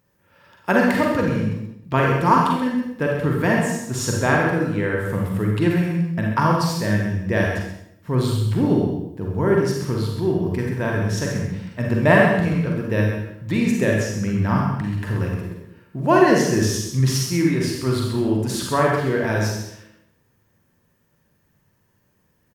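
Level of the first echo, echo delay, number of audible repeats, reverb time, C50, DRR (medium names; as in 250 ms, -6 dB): -8.0 dB, 131 ms, 1, 0.75 s, 0.0 dB, -2.0 dB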